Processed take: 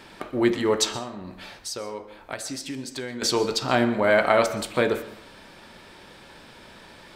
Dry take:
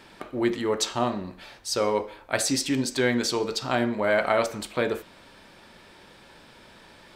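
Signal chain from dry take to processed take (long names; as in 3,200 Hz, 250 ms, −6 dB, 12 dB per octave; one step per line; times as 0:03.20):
0:00.91–0:03.22: downward compressor 6 to 1, threshold −35 dBFS, peak gain reduction 16 dB
dense smooth reverb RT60 0.59 s, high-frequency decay 0.55×, pre-delay 110 ms, DRR 15 dB
level +3.5 dB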